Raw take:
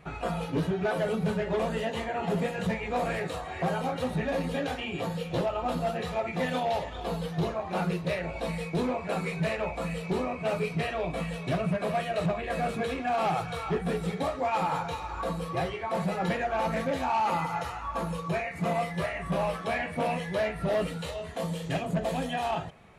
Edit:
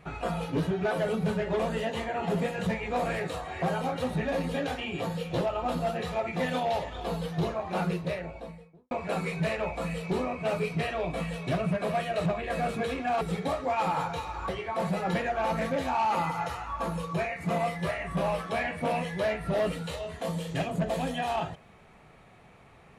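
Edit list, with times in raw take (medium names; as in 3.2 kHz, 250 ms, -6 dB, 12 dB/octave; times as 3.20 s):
7.81–8.91 s: studio fade out
13.21–13.96 s: delete
15.24–15.64 s: delete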